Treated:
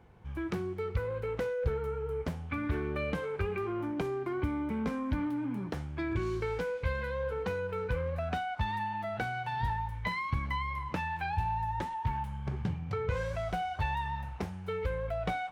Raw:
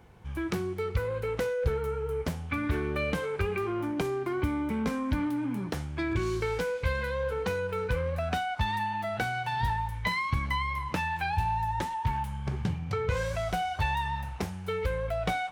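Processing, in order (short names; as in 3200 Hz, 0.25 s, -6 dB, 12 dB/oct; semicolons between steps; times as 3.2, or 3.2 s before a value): high shelf 3900 Hz -10 dB; gain -3 dB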